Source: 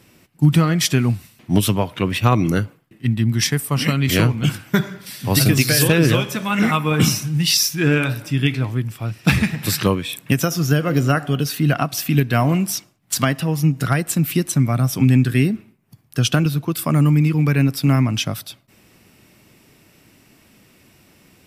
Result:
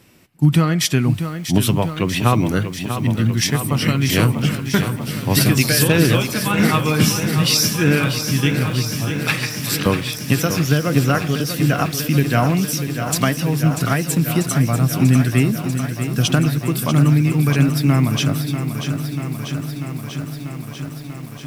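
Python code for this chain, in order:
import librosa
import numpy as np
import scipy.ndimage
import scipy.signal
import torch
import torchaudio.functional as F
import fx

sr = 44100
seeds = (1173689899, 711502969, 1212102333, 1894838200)

y = fx.highpass(x, sr, hz=870.0, slope=12, at=(9.1, 9.86))
y = fx.echo_crushed(y, sr, ms=641, feedback_pct=80, bits=7, wet_db=-9)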